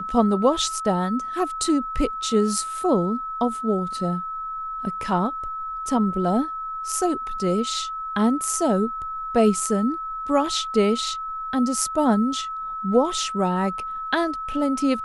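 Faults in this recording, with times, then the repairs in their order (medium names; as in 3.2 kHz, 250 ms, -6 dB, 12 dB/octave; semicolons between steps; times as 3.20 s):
whine 1.3 kHz -28 dBFS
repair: band-stop 1.3 kHz, Q 30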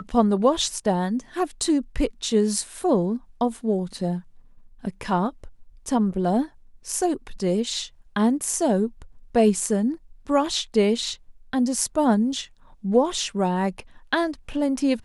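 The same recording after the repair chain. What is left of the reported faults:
nothing left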